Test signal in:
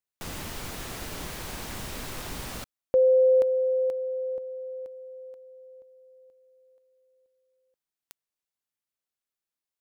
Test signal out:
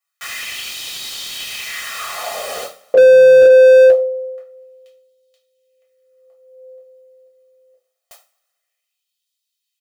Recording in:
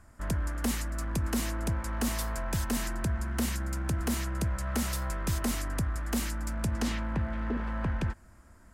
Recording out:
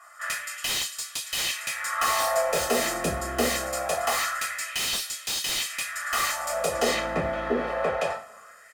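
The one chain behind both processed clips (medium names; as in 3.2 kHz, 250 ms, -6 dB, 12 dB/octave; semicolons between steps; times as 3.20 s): comb 1.6 ms, depth 86%; LFO high-pass sine 0.24 Hz 300–3600 Hz; two-slope reverb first 0.32 s, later 1.8 s, from -27 dB, DRR -5 dB; slew-rate limiter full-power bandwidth 200 Hz; trim +3 dB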